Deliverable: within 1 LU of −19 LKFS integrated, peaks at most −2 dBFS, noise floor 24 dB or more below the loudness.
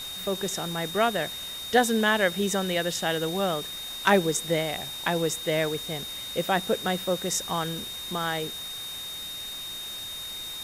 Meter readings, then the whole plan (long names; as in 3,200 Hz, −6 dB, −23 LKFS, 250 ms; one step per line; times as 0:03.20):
interfering tone 3,700 Hz; level of the tone −35 dBFS; background noise floor −37 dBFS; target noise floor −52 dBFS; integrated loudness −27.5 LKFS; sample peak −7.5 dBFS; target loudness −19.0 LKFS
→ notch filter 3,700 Hz, Q 30
broadband denoise 15 dB, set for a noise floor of −37 dBFS
level +8.5 dB
brickwall limiter −2 dBFS